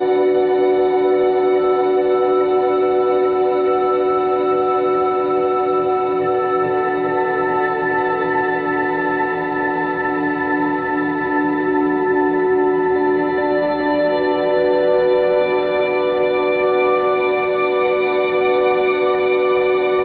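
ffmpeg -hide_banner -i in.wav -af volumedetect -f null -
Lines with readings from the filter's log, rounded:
mean_volume: -16.5 dB
max_volume: -5.3 dB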